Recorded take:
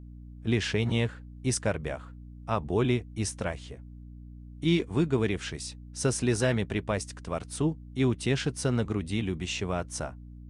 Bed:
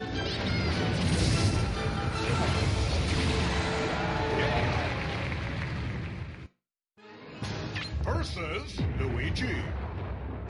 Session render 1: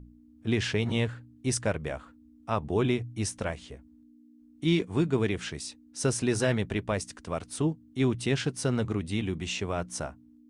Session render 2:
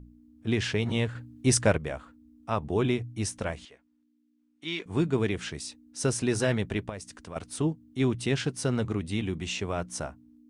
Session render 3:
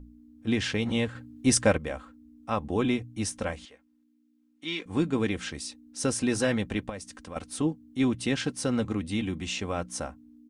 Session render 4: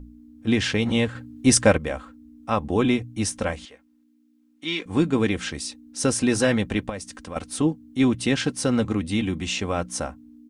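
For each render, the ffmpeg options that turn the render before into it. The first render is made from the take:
-af "bandreject=f=60:t=h:w=4,bandreject=f=120:t=h:w=4,bandreject=f=180:t=h:w=4"
-filter_complex "[0:a]asettb=1/sr,asplit=3[s0][s1][s2];[s0]atrim=end=1.154[s3];[s1]atrim=start=1.15:end=1.78,asetpts=PTS-STARTPTS,afade=t=in:d=0.004:c=qsin,afade=t=out:st=0.626:d=0.004:c=qsin,acontrast=47[s4];[s2]atrim=start=1.776[s5];[s3][s4]acrossfade=d=0.004:c1=hsin:c2=qsin[s6];[s6][s5]acrossfade=d=0.004:c1=qsin:c2=hsin,asettb=1/sr,asplit=3[s7][s8][s9];[s7]atrim=end=3.654[s10];[s8]atrim=start=3.65:end=4.86,asetpts=PTS-STARTPTS,afade=t=in:d=0.004:c=qsin,afade=t=out:st=1.206:d=0.004:c=qsin,bandpass=f=2200:t=q:w=0.56[s11];[s9]atrim=start=4.856[s12];[s10][s11]acrossfade=d=0.004:c1=hsin:c2=qsin[s13];[s13][s12]acrossfade=d=0.004:c1=qsin:c2=hsin,asettb=1/sr,asplit=3[s14][s15][s16];[s14]atrim=end=6.894[s17];[s15]atrim=start=6.89:end=7.36,asetpts=PTS-STARTPTS,afade=t=in:d=0.004:c=qsin,afade=t=out:st=0.466:d=0.004:c=qsin,acompressor=threshold=0.00794:ratio=2:attack=3.2:release=140:knee=1:detection=peak[s18];[s16]atrim=start=7.356[s19];[s17][s18]acrossfade=d=0.004:c1=hsin:c2=qsin[s20];[s20][s19]acrossfade=d=0.004:c1=qsin:c2=hsin"
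-af "aecho=1:1:3.8:0.48"
-af "volume=1.88"

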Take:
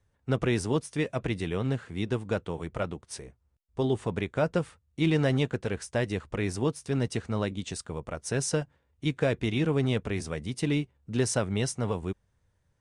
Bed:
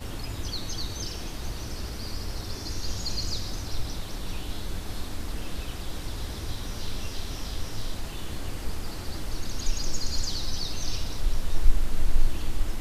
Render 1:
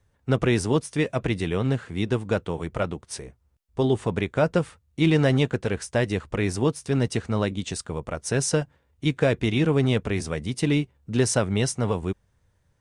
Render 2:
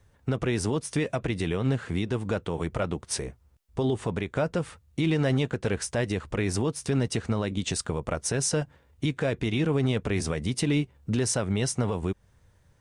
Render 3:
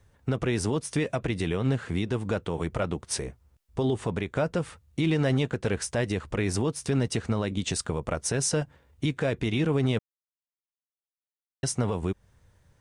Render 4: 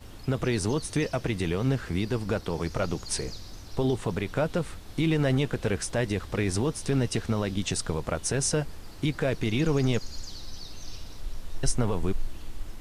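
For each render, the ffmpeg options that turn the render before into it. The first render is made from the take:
-af "volume=1.78"
-filter_complex "[0:a]asplit=2[s0][s1];[s1]acompressor=threshold=0.0398:ratio=6,volume=0.891[s2];[s0][s2]amix=inputs=2:normalize=0,alimiter=limit=0.141:level=0:latency=1:release=151"
-filter_complex "[0:a]asplit=3[s0][s1][s2];[s0]atrim=end=9.99,asetpts=PTS-STARTPTS,afade=t=out:st=9.986:d=0.004:c=hsin[s3];[s1]atrim=start=9.99:end=11.63,asetpts=PTS-STARTPTS,volume=0[s4];[s2]atrim=start=11.63,asetpts=PTS-STARTPTS,afade=t=in:d=0.004:c=hsin[s5];[s3][s4][s5]concat=n=3:v=0:a=1"
-filter_complex "[1:a]volume=0.316[s0];[0:a][s0]amix=inputs=2:normalize=0"

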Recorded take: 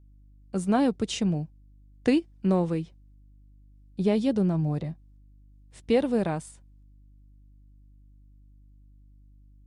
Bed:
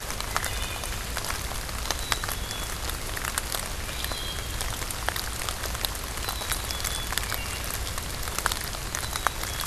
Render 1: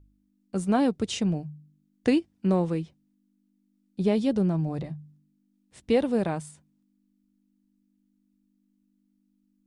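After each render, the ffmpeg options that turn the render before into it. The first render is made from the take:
-af "bandreject=f=50:t=h:w=4,bandreject=f=100:t=h:w=4,bandreject=f=150:t=h:w=4"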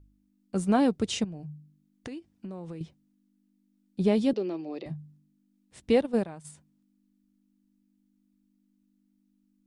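-filter_complex "[0:a]asettb=1/sr,asplit=3[s0][s1][s2];[s0]atrim=end=1.244[s3];[s1]atrim=start=1.24:end=2.81,asetpts=PTS-STARTPTS,afade=t=in:d=0.004:c=qsin,afade=t=out:st=1.566:d=0.004:c=qsin,acompressor=threshold=0.0158:ratio=12:attack=3.2:release=140:knee=1:detection=peak[s4];[s2]atrim=start=2.806[s5];[s3][s4]acrossfade=d=0.004:c1=hsin:c2=qsin[s6];[s6][s5]acrossfade=d=0.004:c1=qsin:c2=hsin,asettb=1/sr,asplit=3[s7][s8][s9];[s7]atrim=end=4.334[s10];[s8]atrim=start=4.33:end=4.86,asetpts=PTS-STARTPTS,afade=t=in:d=0.004:c=qsin,afade=t=out:st=0.526:d=0.004:c=qsin,highpass=f=320:w=0.5412,highpass=f=320:w=1.3066,equalizer=f=340:t=q:w=4:g=4,equalizer=f=680:t=q:w=4:g=-6,equalizer=f=970:t=q:w=4:g=-7,equalizer=f=1500:t=q:w=4:g=-10,equalizer=f=2600:t=q:w=4:g=6,equalizer=f=4600:t=q:w=4:g=5,lowpass=f=5300:w=0.5412,lowpass=f=5300:w=1.3066[s11];[s9]atrim=start=4.856[s12];[s10][s11]acrossfade=d=0.004:c1=hsin:c2=qsin[s13];[s13][s12]acrossfade=d=0.004:c1=qsin:c2=hsin,asplit=3[s14][s15][s16];[s14]afade=t=out:st=5.92:d=0.02[s17];[s15]agate=range=0.224:threshold=0.0562:ratio=16:release=100:detection=peak,afade=t=in:st=5.92:d=0.02,afade=t=out:st=6.44:d=0.02[s18];[s16]afade=t=in:st=6.44:d=0.02[s19];[s17][s18][s19]amix=inputs=3:normalize=0"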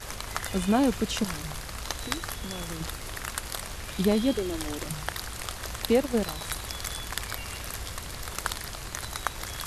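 -filter_complex "[1:a]volume=0.562[s0];[0:a][s0]amix=inputs=2:normalize=0"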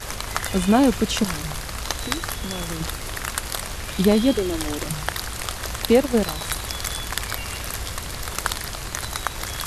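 -af "volume=2.11,alimiter=limit=0.708:level=0:latency=1"

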